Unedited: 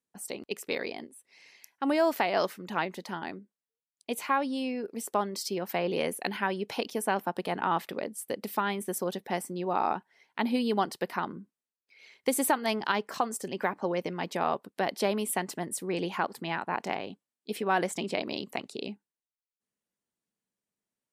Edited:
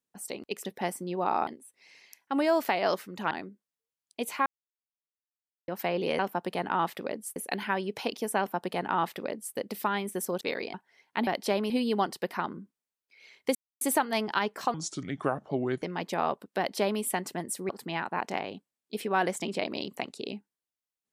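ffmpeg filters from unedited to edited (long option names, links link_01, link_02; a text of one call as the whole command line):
ffmpeg -i in.wav -filter_complex "[0:a]asplit=16[link_01][link_02][link_03][link_04][link_05][link_06][link_07][link_08][link_09][link_10][link_11][link_12][link_13][link_14][link_15][link_16];[link_01]atrim=end=0.652[link_17];[link_02]atrim=start=9.138:end=9.962[link_18];[link_03]atrim=start=0.978:end=2.822[link_19];[link_04]atrim=start=3.208:end=4.36,asetpts=PTS-STARTPTS,afade=type=out:start_time=1.148:duration=0.004:curve=hsin[link_20];[link_05]atrim=start=4.36:end=5.58,asetpts=PTS-STARTPTS,volume=0[link_21];[link_06]atrim=start=5.58:end=6.092,asetpts=PTS-STARTPTS,afade=type=in:duration=0.004:curve=hsin[link_22];[link_07]atrim=start=7.108:end=8.282[link_23];[link_08]atrim=start=6.088:end=9.142[link_24];[link_09]atrim=start=0.648:end=0.982[link_25];[link_10]atrim=start=9.958:end=10.492[link_26];[link_11]atrim=start=14.808:end=15.242[link_27];[link_12]atrim=start=10.488:end=12.34,asetpts=PTS-STARTPTS,afade=type=out:start_time=1.848:duration=0.004:curve=hsin,apad=pad_dur=0.26[link_28];[link_13]atrim=start=12.34:end=13.274,asetpts=PTS-STARTPTS,afade=type=in:duration=0.004:curve=hsin[link_29];[link_14]atrim=start=13.27:end=14.05,asetpts=PTS-STARTPTS,asetrate=31752,aresample=44100[link_30];[link_15]atrim=start=14.046:end=15.922[link_31];[link_16]atrim=start=16.248[link_32];[link_17][link_18]acrossfade=duration=0.004:curve1=hsin:curve2=hsin[link_33];[link_33][link_19]acrossfade=duration=0.004:curve1=hsin:curve2=hsin[link_34];[link_20][link_21][link_22]concat=n=3:v=0:a=1[link_35];[link_34][link_35]acrossfade=duration=0.004:curve1=hsin:curve2=hsin[link_36];[link_36][link_23]acrossfade=duration=0.004:curve1=hsin:curve2=hsin[link_37];[link_37][link_24]acrossfade=duration=0.004:curve1=hsin:curve2=hsin[link_38];[link_38][link_25]acrossfade=duration=0.004:curve1=hsin:curve2=hsin[link_39];[link_39][link_26]acrossfade=duration=0.004:curve1=hsin:curve2=hsin[link_40];[link_40][link_27]acrossfade=duration=0.004:curve1=hsin:curve2=hsin[link_41];[link_28][link_29]concat=n=2:v=0:a=1[link_42];[link_41][link_42]acrossfade=duration=0.004:curve1=hsin:curve2=hsin[link_43];[link_43][link_30]acrossfade=duration=0.004:curve1=hsin:curve2=hsin[link_44];[link_44][link_31]acrossfade=duration=0.004:curve1=hsin:curve2=hsin[link_45];[link_45][link_32]acrossfade=duration=0.004:curve1=hsin:curve2=hsin" out.wav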